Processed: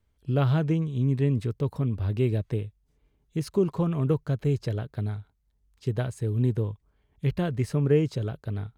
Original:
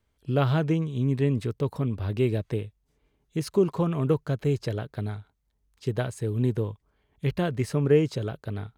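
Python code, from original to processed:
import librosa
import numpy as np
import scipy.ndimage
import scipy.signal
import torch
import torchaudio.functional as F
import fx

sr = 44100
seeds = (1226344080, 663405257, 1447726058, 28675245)

y = fx.low_shelf(x, sr, hz=170.0, db=8.0)
y = F.gain(torch.from_numpy(y), -3.5).numpy()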